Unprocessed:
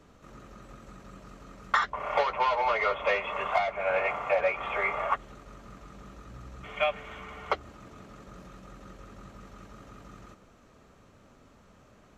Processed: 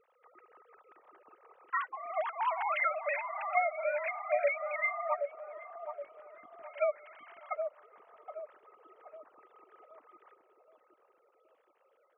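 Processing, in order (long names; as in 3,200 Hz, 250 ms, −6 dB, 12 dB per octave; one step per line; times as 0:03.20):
three sine waves on the formant tracks
0:02.47–0:04.91: spectral tilt +3.5 dB per octave
delay with a low-pass on its return 772 ms, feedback 41%, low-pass 760 Hz, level −4 dB
level −5 dB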